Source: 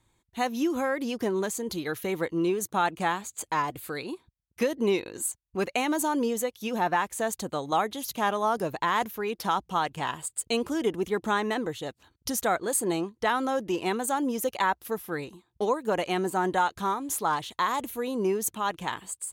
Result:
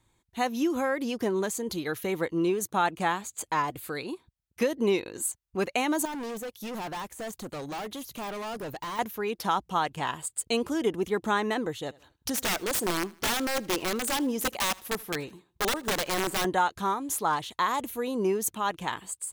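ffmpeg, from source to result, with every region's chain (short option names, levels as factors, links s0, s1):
-filter_complex "[0:a]asettb=1/sr,asplit=3[s0][s1][s2];[s0]atrim=end=6.054[s3];[s1]atrim=start=6.05:end=8.99,asetpts=PTS-STARTPTS,afade=t=in:d=0.004:c=qsin,afade=t=out:st=2.936:d=0.004:c=qsin,deesser=0.9,highshelf=f=11000:g=8,volume=47.3,asoftclip=hard,volume=0.0211[s4];[s2]atrim=start=8.986[s5];[s3][s4]acrossfade=d=0.004:c1=hsin:c2=qsin[s6];[s6][s5]acrossfade=d=0.004:c1=qsin:c2=hsin,asettb=1/sr,asplit=3[s7][s8][s9];[s7]atrim=end=11.804[s10];[s8]atrim=start=11.8:end=16.45,asetpts=PTS-STARTPTS,afade=t=in:d=0.004:c=qsin,afade=t=out:st=4.646:d=0.004:c=qsin,aeval=exprs='(mod(11.9*val(0)+1,2)-1)/11.9':c=same,aecho=1:1:78|156|234:0.0708|0.029|0.0119,atrim=end_sample=205065[s11];[s9]atrim=start=16.446[s12];[s10][s11]acrossfade=d=0.004:c1=hsin:c2=qsin[s13];[s13][s12]acrossfade=d=0.004:c1=qsin:c2=hsin"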